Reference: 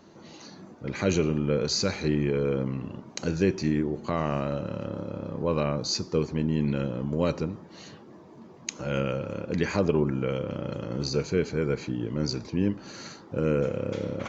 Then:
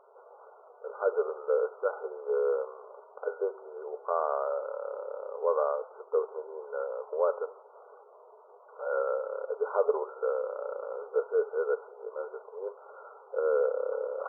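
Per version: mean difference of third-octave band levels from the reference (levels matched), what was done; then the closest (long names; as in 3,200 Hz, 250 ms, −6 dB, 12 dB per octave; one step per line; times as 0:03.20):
17.5 dB: linear-phase brick-wall band-pass 400–1,500 Hz
one half of a high-frequency compander decoder only
level +1.5 dB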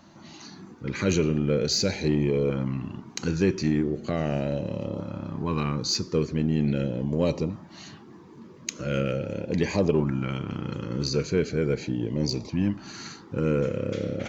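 1.5 dB: auto-filter notch saw up 0.4 Hz 410–1,600 Hz
in parallel at −9 dB: hard clipping −23 dBFS, distortion −11 dB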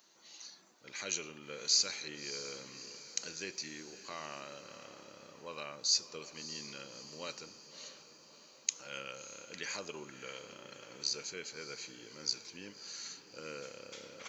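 10.5 dB: first difference
feedback delay with all-pass diffusion 619 ms, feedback 56%, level −13 dB
level +3 dB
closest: second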